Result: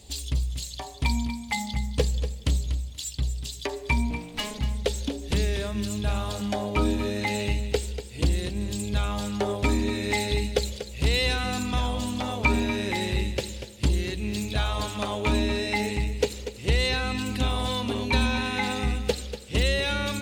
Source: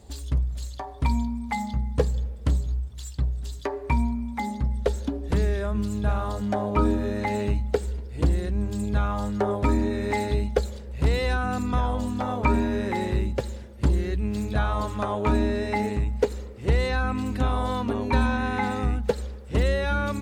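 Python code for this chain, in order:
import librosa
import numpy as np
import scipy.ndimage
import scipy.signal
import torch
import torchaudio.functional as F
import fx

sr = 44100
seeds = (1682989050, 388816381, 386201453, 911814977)

y = fx.lower_of_two(x, sr, delay_ms=3.1, at=(4.1, 4.59))
y = fx.high_shelf_res(y, sr, hz=2000.0, db=10.0, q=1.5)
y = fx.echo_feedback(y, sr, ms=240, feedback_pct=18, wet_db=-11.0)
y = F.gain(torch.from_numpy(y), -2.0).numpy()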